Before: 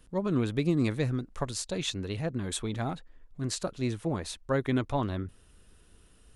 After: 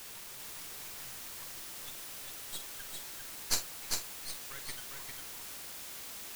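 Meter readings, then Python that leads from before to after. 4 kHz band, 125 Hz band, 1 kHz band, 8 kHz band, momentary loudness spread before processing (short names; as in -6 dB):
-2.0 dB, -27.5 dB, -12.0 dB, +1.5 dB, 8 LU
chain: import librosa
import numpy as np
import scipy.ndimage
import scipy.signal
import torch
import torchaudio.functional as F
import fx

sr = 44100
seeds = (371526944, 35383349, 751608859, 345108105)

p1 = fx.bin_expand(x, sr, power=3.0)
p2 = scipy.signal.sosfilt(scipy.signal.cheby1(4, 1.0, [130.0, 990.0], 'bandstop', fs=sr, output='sos'), p1)
p3 = np.diff(p2, prepend=0.0)
p4 = fx.hpss(p3, sr, part='percussive', gain_db=6)
p5 = fx.high_shelf(p4, sr, hz=7100.0, db=-4.5)
p6 = fx.filter_sweep_bandpass(p5, sr, from_hz=220.0, to_hz=5100.0, start_s=1.97, end_s=3.15, q=0.82)
p7 = np.maximum(p6, 0.0)
p8 = fx.quant_dither(p7, sr, seeds[0], bits=8, dither='triangular')
p9 = p7 + (p8 * 10.0 ** (-9.0 / 20.0))
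p10 = fx.doubler(p9, sr, ms=46.0, db=-10.5)
p11 = p10 + fx.echo_single(p10, sr, ms=400, db=-3.5, dry=0)
y = p11 * 10.0 ** (10.0 / 20.0)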